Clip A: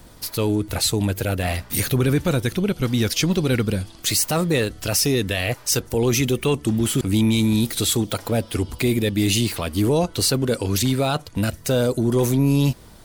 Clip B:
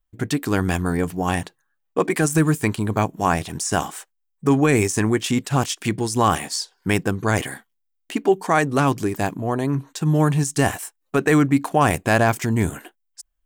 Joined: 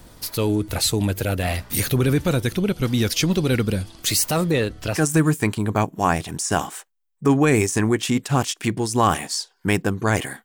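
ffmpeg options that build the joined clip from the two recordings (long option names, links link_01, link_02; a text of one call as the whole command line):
ffmpeg -i cue0.wav -i cue1.wav -filter_complex "[0:a]asettb=1/sr,asplit=3[link_01][link_02][link_03];[link_01]atrim=end=4.514[link_04];[link_02]atrim=start=4.51:end=5.01,asetpts=PTS-STARTPTS,afade=type=in:duration=0.004:curve=qsin,afade=type=out:start_time=0.496:duration=0.004:curve=qsin,highshelf=frequency=6000:gain=-11[link_05];[link_03]atrim=start=5.006[link_06];[link_04][link_05]acrossfade=duration=0.004:curve1=hsin:curve2=qsin[link_07];[link_07][link_06]acrossfade=duration=0.004:curve1=qsin:curve2=hsin,apad=whole_dur=10.44,atrim=end=10.44,atrim=end=5.01,asetpts=PTS-STARTPTS[link_08];[1:a]atrim=start=2.12:end=7.65,asetpts=PTS-STARTPTS[link_09];[link_08][link_09]acrossfade=duration=0.1:curve1=tri:curve2=tri" out.wav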